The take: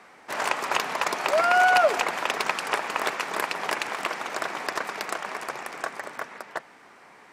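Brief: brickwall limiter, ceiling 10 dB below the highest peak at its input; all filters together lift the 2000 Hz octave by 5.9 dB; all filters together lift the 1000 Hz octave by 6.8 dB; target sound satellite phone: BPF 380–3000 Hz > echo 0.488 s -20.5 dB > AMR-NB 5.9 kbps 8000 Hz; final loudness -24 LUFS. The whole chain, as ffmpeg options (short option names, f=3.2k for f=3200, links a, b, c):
-af "equalizer=f=1k:t=o:g=8.5,equalizer=f=2k:t=o:g=5,alimiter=limit=-12.5dB:level=0:latency=1,highpass=380,lowpass=3k,aecho=1:1:488:0.0944,volume=4dB" -ar 8000 -c:a libopencore_amrnb -b:a 5900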